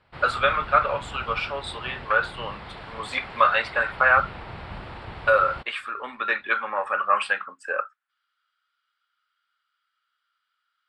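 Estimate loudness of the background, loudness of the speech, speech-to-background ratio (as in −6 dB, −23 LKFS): −39.0 LKFS, −24.0 LKFS, 15.0 dB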